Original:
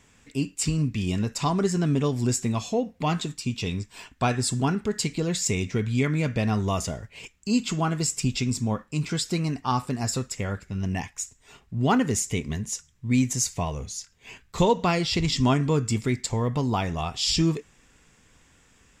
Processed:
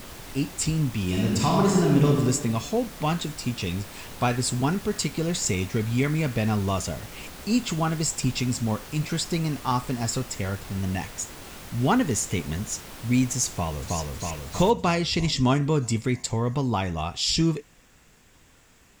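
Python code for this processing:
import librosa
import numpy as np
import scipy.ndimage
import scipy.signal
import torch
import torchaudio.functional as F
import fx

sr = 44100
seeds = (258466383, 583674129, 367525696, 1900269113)

y = fx.reverb_throw(x, sr, start_s=1.06, length_s=1.0, rt60_s=1.3, drr_db=-2.5)
y = fx.echo_throw(y, sr, start_s=13.5, length_s=0.48, ms=320, feedback_pct=65, wet_db=-1.0)
y = fx.noise_floor_step(y, sr, seeds[0], at_s=14.7, before_db=-41, after_db=-61, tilt_db=3.0)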